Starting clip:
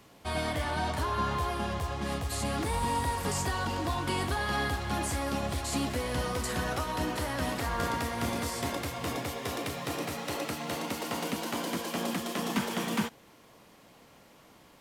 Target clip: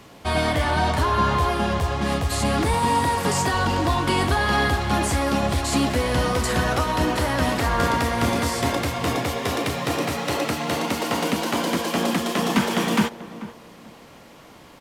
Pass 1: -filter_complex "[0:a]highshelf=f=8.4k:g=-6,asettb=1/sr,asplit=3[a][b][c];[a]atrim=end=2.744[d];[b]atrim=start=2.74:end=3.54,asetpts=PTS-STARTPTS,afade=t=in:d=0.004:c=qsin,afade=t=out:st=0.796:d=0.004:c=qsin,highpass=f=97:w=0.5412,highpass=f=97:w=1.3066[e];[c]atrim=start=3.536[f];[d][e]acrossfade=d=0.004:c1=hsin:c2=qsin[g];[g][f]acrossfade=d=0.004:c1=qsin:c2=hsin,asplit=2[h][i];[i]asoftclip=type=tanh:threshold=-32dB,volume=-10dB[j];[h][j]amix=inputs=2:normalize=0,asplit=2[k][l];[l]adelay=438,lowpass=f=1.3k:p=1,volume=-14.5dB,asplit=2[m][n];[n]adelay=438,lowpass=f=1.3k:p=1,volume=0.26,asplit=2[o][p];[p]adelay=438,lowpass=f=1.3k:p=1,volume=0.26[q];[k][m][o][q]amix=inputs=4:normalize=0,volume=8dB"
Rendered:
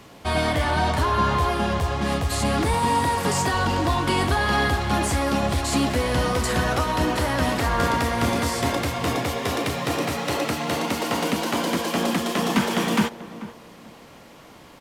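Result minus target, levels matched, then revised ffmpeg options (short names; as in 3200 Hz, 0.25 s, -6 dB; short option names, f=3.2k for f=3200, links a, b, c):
soft clip: distortion +9 dB
-filter_complex "[0:a]highshelf=f=8.4k:g=-6,asettb=1/sr,asplit=3[a][b][c];[a]atrim=end=2.744[d];[b]atrim=start=2.74:end=3.54,asetpts=PTS-STARTPTS,afade=t=in:d=0.004:c=qsin,afade=t=out:st=0.796:d=0.004:c=qsin,highpass=f=97:w=0.5412,highpass=f=97:w=1.3066[e];[c]atrim=start=3.536[f];[d][e]acrossfade=d=0.004:c1=hsin:c2=qsin[g];[g][f]acrossfade=d=0.004:c1=qsin:c2=hsin,asplit=2[h][i];[i]asoftclip=type=tanh:threshold=-24dB,volume=-10dB[j];[h][j]amix=inputs=2:normalize=0,asplit=2[k][l];[l]adelay=438,lowpass=f=1.3k:p=1,volume=-14.5dB,asplit=2[m][n];[n]adelay=438,lowpass=f=1.3k:p=1,volume=0.26,asplit=2[o][p];[p]adelay=438,lowpass=f=1.3k:p=1,volume=0.26[q];[k][m][o][q]amix=inputs=4:normalize=0,volume=8dB"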